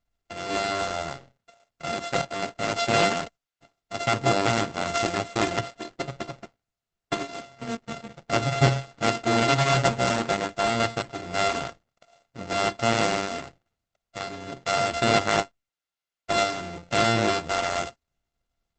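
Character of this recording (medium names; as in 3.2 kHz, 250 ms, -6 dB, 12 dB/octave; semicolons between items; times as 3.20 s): a buzz of ramps at a fixed pitch in blocks of 64 samples; Opus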